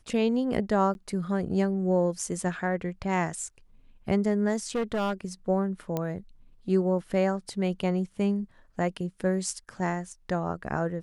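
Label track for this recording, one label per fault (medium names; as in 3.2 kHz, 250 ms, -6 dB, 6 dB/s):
0.940000	0.950000	dropout 11 ms
4.750000	5.130000	clipped -24 dBFS
5.970000	5.970000	pop -16 dBFS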